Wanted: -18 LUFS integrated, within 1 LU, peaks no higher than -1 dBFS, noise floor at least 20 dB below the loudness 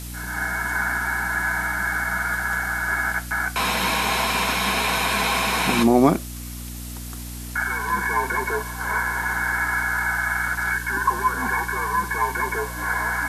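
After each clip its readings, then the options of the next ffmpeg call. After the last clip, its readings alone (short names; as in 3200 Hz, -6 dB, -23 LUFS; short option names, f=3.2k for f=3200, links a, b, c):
hum 60 Hz; harmonics up to 300 Hz; hum level -33 dBFS; noise floor -34 dBFS; noise floor target -43 dBFS; loudness -22.5 LUFS; peak -3.5 dBFS; loudness target -18.0 LUFS
-> -af "bandreject=f=60:t=h:w=6,bandreject=f=120:t=h:w=6,bandreject=f=180:t=h:w=6,bandreject=f=240:t=h:w=6,bandreject=f=300:t=h:w=6"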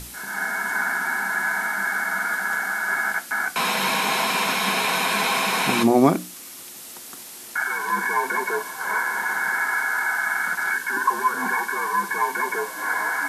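hum none; noise floor -40 dBFS; noise floor target -43 dBFS
-> -af "afftdn=nr=6:nf=-40"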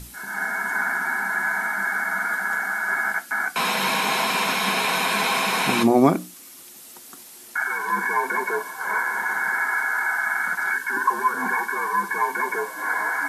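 noise floor -44 dBFS; loudness -22.5 LUFS; peak -3.5 dBFS; loudness target -18.0 LUFS
-> -af "volume=4.5dB,alimiter=limit=-1dB:level=0:latency=1"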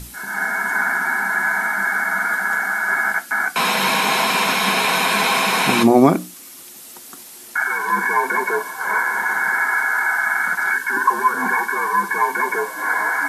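loudness -18.0 LUFS; peak -1.0 dBFS; noise floor -40 dBFS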